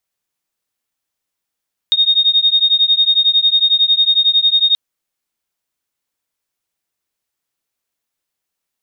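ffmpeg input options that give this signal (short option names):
-f lavfi -i "aevalsrc='0.224*(sin(2*PI*3700*t)+sin(2*PI*3711*t))':d=2.83:s=44100"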